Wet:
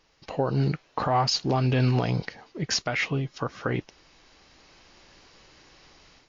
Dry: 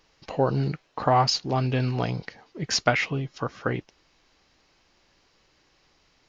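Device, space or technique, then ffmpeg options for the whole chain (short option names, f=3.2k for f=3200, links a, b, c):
low-bitrate web radio: -af "dynaudnorm=f=440:g=3:m=11dB,alimiter=limit=-12.5dB:level=0:latency=1:release=163,volume=-1dB" -ar 16000 -c:a libmp3lame -b:a 48k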